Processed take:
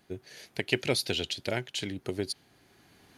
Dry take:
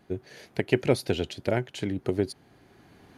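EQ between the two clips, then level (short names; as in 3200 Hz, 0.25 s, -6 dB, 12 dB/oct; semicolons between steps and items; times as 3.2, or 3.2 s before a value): high shelf 2100 Hz +11.5 dB; dynamic EQ 3700 Hz, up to +6 dB, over -41 dBFS, Q 0.95; -7.0 dB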